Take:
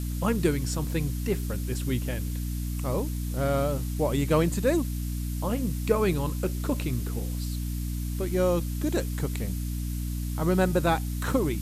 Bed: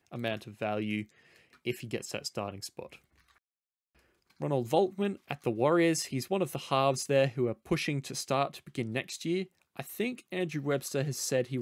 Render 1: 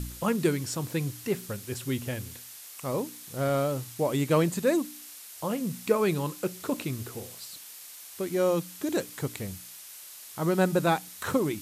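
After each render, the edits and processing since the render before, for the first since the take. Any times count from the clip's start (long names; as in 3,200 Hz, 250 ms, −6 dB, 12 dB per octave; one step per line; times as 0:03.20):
hum removal 60 Hz, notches 5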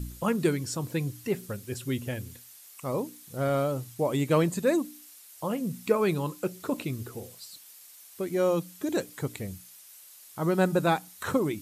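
broadband denoise 8 dB, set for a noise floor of −46 dBFS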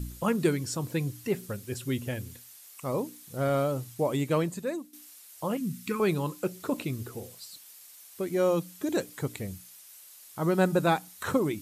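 0:04.01–0:04.93: fade out, to −14.5 dB
0:05.57–0:06.00: Butterworth band-reject 640 Hz, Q 0.73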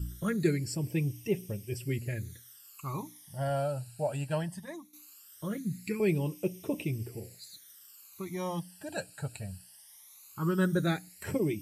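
notch comb filter 250 Hz
all-pass phaser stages 12, 0.19 Hz, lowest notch 350–1,400 Hz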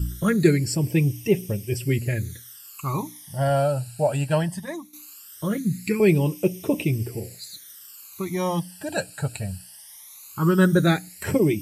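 level +10 dB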